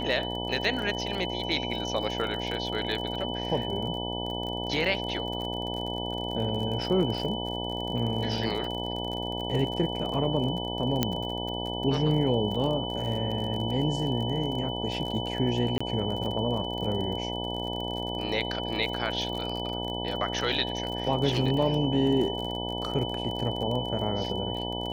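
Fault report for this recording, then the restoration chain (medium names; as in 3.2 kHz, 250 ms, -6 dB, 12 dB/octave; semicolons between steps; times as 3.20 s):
buzz 60 Hz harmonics 16 -34 dBFS
crackle 38 per s -33 dBFS
whine 3 kHz -35 dBFS
11.03 s: pop -8 dBFS
15.78–15.80 s: dropout 25 ms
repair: de-click; band-stop 3 kHz, Q 30; de-hum 60 Hz, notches 16; interpolate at 15.78 s, 25 ms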